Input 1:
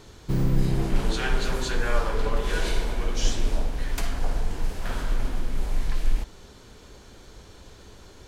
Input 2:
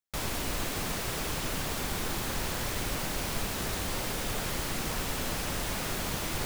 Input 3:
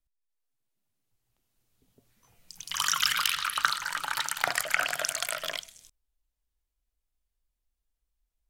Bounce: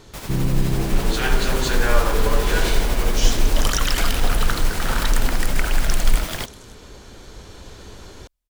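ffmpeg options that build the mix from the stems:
ffmpeg -i stem1.wav -i stem2.wav -i stem3.wav -filter_complex "[0:a]volume=2dB[link_01];[1:a]tremolo=f=12:d=0.44,volume=0.5dB[link_02];[2:a]alimiter=limit=-10.5dB:level=0:latency=1:release=495,adelay=850,volume=-2.5dB[link_03];[link_01][link_02][link_03]amix=inputs=3:normalize=0,dynaudnorm=framelen=320:gausssize=7:maxgain=6dB" out.wav

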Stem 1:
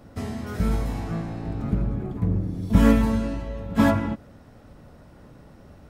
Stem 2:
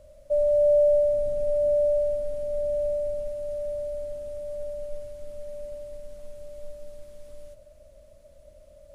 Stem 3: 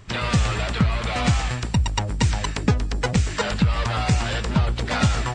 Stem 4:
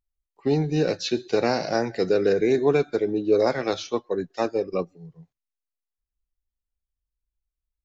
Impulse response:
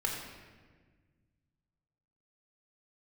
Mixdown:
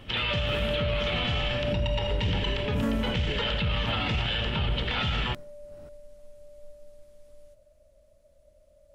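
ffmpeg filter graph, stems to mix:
-filter_complex "[0:a]tremolo=f=1.7:d=0.95,volume=-2.5dB[link_01];[1:a]volume=-8dB[link_02];[2:a]lowpass=frequency=3100:width_type=q:width=5.9,volume=-9dB,asplit=2[link_03][link_04];[link_04]volume=-5dB[link_05];[3:a]volume=-18dB[link_06];[4:a]atrim=start_sample=2205[link_07];[link_05][link_07]afir=irnorm=-1:irlink=0[link_08];[link_01][link_02][link_03][link_06][link_08]amix=inputs=5:normalize=0,alimiter=limit=-19dB:level=0:latency=1:release=28"

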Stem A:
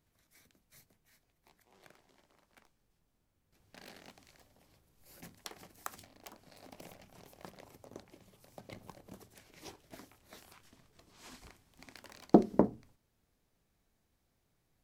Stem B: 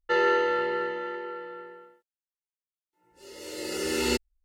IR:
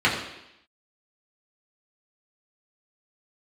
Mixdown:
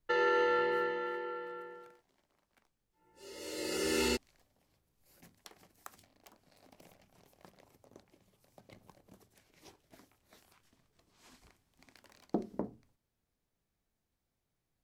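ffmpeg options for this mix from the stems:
-filter_complex "[0:a]volume=-7.5dB[link_01];[1:a]volume=-3.5dB[link_02];[link_01][link_02]amix=inputs=2:normalize=0,alimiter=limit=-21dB:level=0:latency=1:release=89"

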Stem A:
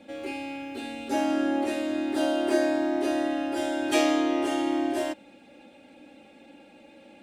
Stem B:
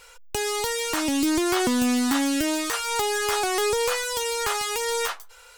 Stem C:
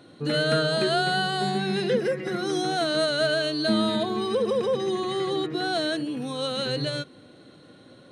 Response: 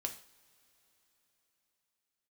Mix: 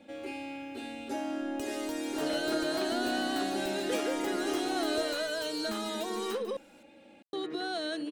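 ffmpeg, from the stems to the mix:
-filter_complex "[0:a]acompressor=threshold=-29dB:ratio=2.5,volume=-4.5dB[link_01];[1:a]adelay=1250,volume=-16dB[link_02];[2:a]acompressor=threshold=-33dB:ratio=6,highpass=frequency=230:width=0.5412,highpass=frequency=230:width=1.3066,adelay=2000,volume=1dB,asplit=3[link_03][link_04][link_05];[link_03]atrim=end=6.57,asetpts=PTS-STARTPTS,afade=type=out:start_time=6.566:duration=0.004:curve=hsin[link_06];[link_04]atrim=start=6.57:end=7.33,asetpts=PTS-STARTPTS,volume=0[link_07];[link_05]atrim=start=7.33,asetpts=PTS-STARTPTS,afade=type=in:duration=0.004:curve=hsin[link_08];[link_06][link_07][link_08]concat=n=3:v=0:a=1[link_09];[link_01][link_02][link_09]amix=inputs=3:normalize=0"

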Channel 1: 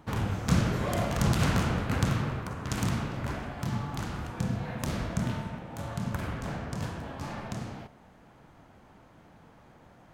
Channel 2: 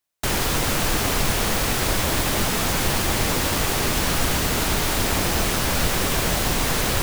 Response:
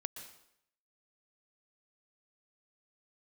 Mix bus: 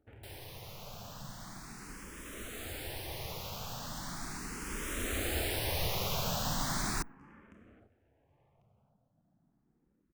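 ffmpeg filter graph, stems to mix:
-filter_complex "[0:a]acompressor=threshold=-34dB:ratio=6,afwtdn=0.00316,volume=-14dB,asplit=2[link_01][link_02];[link_02]volume=-16dB[link_03];[1:a]volume=-9dB,afade=type=in:start_time=2.12:duration=0.58:silence=0.473151,afade=type=in:start_time=4.61:duration=0.73:silence=0.398107[link_04];[link_03]aecho=0:1:1095:1[link_05];[link_01][link_04][link_05]amix=inputs=3:normalize=0,asplit=2[link_06][link_07];[link_07]afreqshift=0.38[link_08];[link_06][link_08]amix=inputs=2:normalize=1"

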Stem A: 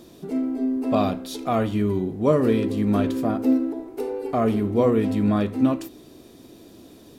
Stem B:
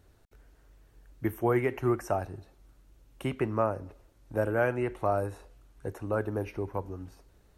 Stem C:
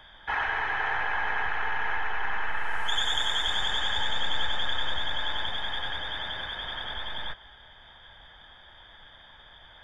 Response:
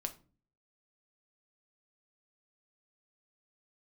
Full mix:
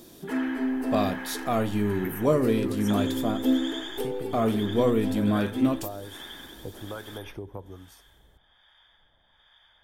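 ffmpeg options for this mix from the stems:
-filter_complex "[0:a]volume=-3.5dB[link_01];[1:a]adelay=800,volume=2dB[link_02];[2:a]volume=-9dB[link_03];[link_02][link_03]amix=inputs=2:normalize=0,acrossover=split=760[link_04][link_05];[link_04]aeval=exprs='val(0)*(1-0.7/2+0.7/2*cos(2*PI*1.2*n/s))':channel_layout=same[link_06];[link_05]aeval=exprs='val(0)*(1-0.7/2-0.7/2*cos(2*PI*1.2*n/s))':channel_layout=same[link_07];[link_06][link_07]amix=inputs=2:normalize=0,acompressor=threshold=-34dB:ratio=6,volume=0dB[link_08];[link_01][link_08]amix=inputs=2:normalize=0,crystalizer=i=1.5:c=0"

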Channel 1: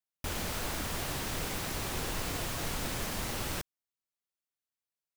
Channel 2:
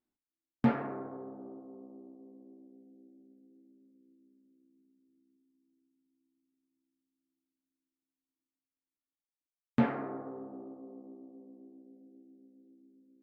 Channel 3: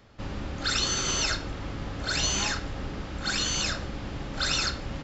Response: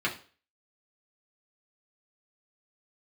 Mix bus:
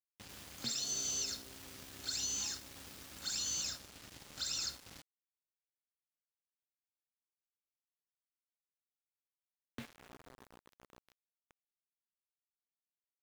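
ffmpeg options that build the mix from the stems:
-filter_complex "[0:a]highpass=970,adelay=50,volume=-15.5dB[link_01];[1:a]equalizer=frequency=870:width=2.1:gain=-6,volume=1dB[link_02];[2:a]highpass=frequency=59:width=0.5412,highpass=frequency=59:width=1.3066,alimiter=limit=-19.5dB:level=0:latency=1:release=378,crystalizer=i=5:c=0,volume=-14dB[link_03];[link_01][link_02][link_03]amix=inputs=3:normalize=0,adynamicequalizer=threshold=0.00282:dfrequency=310:dqfactor=3.4:tfrequency=310:tqfactor=3.4:attack=5:release=100:ratio=0.375:range=2.5:mode=cutabove:tftype=bell,acrossover=split=110|1600|3400[link_04][link_05][link_06][link_07];[link_04]acompressor=threshold=-58dB:ratio=4[link_08];[link_05]acompressor=threshold=-53dB:ratio=4[link_09];[link_06]acompressor=threshold=-59dB:ratio=4[link_10];[link_07]acompressor=threshold=-35dB:ratio=4[link_11];[link_08][link_09][link_10][link_11]amix=inputs=4:normalize=0,aeval=exprs='val(0)*gte(abs(val(0)),0.00422)':channel_layout=same"

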